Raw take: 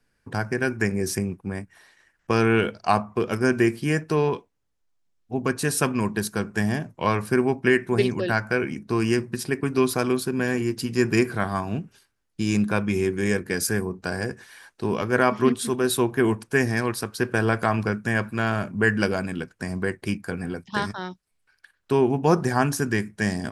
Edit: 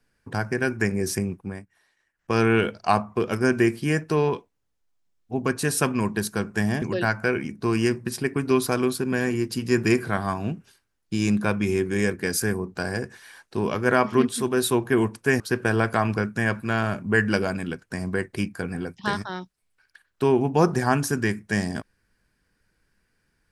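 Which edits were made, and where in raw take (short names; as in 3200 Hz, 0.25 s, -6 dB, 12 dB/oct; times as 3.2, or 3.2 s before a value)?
1.41–2.39 dip -12 dB, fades 0.25 s
6.82–8.09 cut
16.67–17.09 cut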